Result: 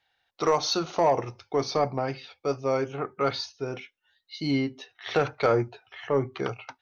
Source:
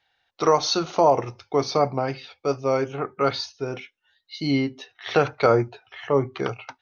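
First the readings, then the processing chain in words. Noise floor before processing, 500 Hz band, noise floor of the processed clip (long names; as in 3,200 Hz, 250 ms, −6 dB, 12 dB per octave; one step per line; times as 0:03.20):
−74 dBFS, −4.0 dB, −77 dBFS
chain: soft clipping −9.5 dBFS, distortion −19 dB
level −3 dB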